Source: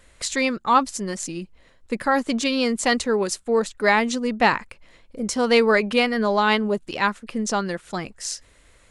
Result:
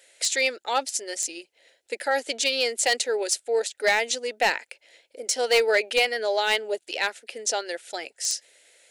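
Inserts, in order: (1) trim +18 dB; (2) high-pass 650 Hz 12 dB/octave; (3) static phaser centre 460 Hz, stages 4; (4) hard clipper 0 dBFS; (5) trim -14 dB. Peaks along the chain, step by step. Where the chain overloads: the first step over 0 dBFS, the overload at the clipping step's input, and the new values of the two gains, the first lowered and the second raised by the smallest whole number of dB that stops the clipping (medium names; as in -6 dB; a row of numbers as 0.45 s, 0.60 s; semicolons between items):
+13.5 dBFS, +13.5 dBFS, +9.5 dBFS, 0.0 dBFS, -14.0 dBFS; step 1, 9.5 dB; step 1 +8 dB, step 5 -4 dB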